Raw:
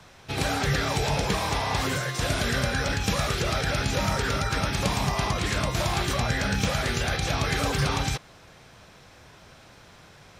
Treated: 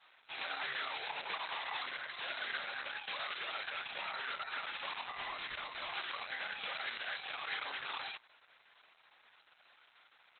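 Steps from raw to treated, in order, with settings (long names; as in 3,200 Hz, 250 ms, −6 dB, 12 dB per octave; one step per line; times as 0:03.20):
high-pass filter 1,100 Hz 12 dB per octave
high-shelf EQ 9,400 Hz −8.5 dB
0:05.09–0:05.93: asymmetric clip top −31 dBFS, bottom −23 dBFS
downsampling to 32,000 Hz
level −6 dB
Opus 8 kbit/s 48,000 Hz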